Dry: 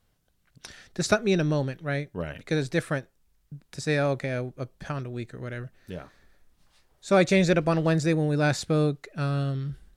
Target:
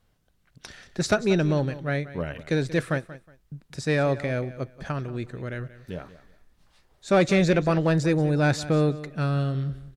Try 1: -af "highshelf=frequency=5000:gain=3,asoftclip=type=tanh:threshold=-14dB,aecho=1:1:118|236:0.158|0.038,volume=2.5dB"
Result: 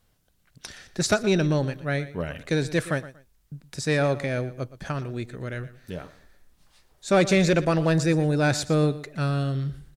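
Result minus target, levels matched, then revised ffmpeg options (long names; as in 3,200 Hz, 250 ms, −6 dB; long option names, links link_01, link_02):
echo 65 ms early; 8,000 Hz band +5.0 dB
-af "highshelf=frequency=5000:gain=-5.5,asoftclip=type=tanh:threshold=-14dB,aecho=1:1:183|366:0.158|0.038,volume=2.5dB"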